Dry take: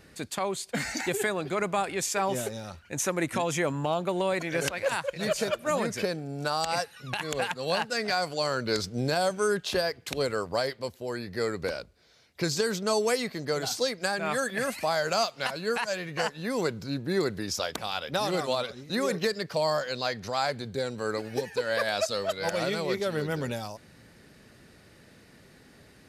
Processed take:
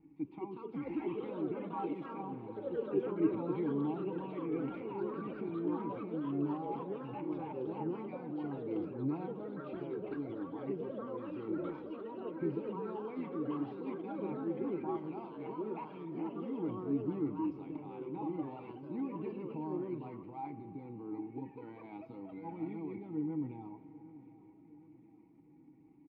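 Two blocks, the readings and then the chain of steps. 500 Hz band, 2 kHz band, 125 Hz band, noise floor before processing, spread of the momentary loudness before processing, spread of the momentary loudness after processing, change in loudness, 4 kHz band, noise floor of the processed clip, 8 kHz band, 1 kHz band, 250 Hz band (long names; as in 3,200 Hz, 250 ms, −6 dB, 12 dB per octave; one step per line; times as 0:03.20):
−11.5 dB, −25.5 dB, −8.5 dB, −56 dBFS, 6 LU, 10 LU, −10.0 dB, below −30 dB, −59 dBFS, below −40 dB, −13.0 dB, −2.0 dB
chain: spectral tilt −4 dB per octave
comb filter 6.3 ms, depth 53%
transient designer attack 0 dB, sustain +7 dB
flanger 0.46 Hz, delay 6.8 ms, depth 2.4 ms, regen +72%
formant filter u
delay with pitch and tempo change per echo 247 ms, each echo +3 semitones, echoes 3
high-frequency loss of the air 430 metres
repeating echo 764 ms, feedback 53%, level −19 dB
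spring reverb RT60 3.7 s, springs 35 ms, chirp 60 ms, DRR 14.5 dB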